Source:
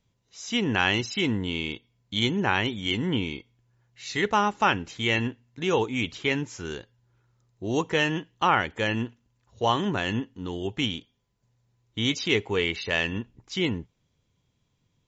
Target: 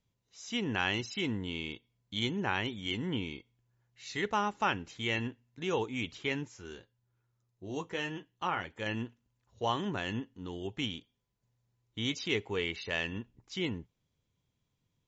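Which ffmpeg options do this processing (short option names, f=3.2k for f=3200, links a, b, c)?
-filter_complex "[0:a]asettb=1/sr,asplit=3[a][b][c];[a]atrim=end=6.484[d];[b]atrim=start=6.48:end=8.86,asetpts=PTS-STARTPTS,afade=t=in:d=0.004:c=qsin,afade=t=out:st=2.376:d=0.004:c=qsin,flanger=delay=8.6:depth=2.7:regen=-45:speed=1.2:shape=sinusoidal[e];[c]atrim=start=8.856[f];[d][e]acrossfade=d=0.004:c1=hsin:c2=qsin[g];[g][f]acrossfade=d=0.004:c1=qsin:c2=hsin,volume=-8dB"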